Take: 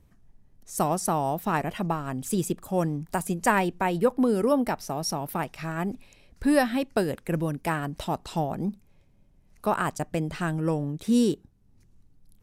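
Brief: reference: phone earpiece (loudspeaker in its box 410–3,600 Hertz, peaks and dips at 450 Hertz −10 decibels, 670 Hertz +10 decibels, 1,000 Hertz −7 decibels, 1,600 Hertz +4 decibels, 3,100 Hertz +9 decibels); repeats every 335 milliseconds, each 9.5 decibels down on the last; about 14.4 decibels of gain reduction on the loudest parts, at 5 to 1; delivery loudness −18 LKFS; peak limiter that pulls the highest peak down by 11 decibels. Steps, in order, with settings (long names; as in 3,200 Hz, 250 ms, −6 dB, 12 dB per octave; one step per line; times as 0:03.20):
downward compressor 5 to 1, threshold −33 dBFS
brickwall limiter −30 dBFS
loudspeaker in its box 410–3,600 Hz, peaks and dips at 450 Hz −10 dB, 670 Hz +10 dB, 1,000 Hz −7 dB, 1,600 Hz +4 dB, 3,100 Hz +9 dB
repeating echo 335 ms, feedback 33%, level −9.5 dB
level +24 dB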